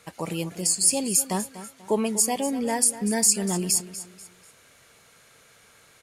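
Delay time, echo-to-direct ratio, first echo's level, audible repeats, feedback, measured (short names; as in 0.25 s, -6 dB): 0.244 s, -13.5 dB, -14.0 dB, 3, 35%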